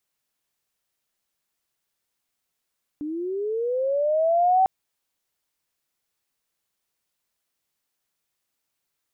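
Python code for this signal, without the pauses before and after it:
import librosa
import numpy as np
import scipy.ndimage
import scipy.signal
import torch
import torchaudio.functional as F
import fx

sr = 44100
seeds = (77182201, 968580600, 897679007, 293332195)

y = fx.chirp(sr, length_s=1.65, from_hz=290.0, to_hz=770.0, law='linear', from_db=-27.5, to_db=-14.5)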